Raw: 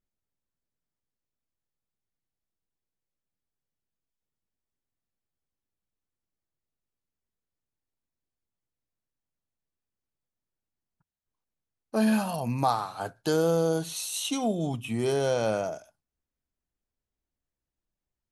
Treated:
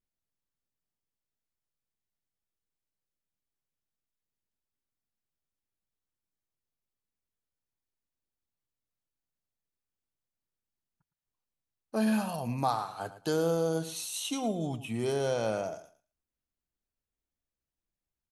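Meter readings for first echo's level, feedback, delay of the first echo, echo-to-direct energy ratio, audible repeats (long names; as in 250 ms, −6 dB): −14.5 dB, 19%, 111 ms, −14.5 dB, 2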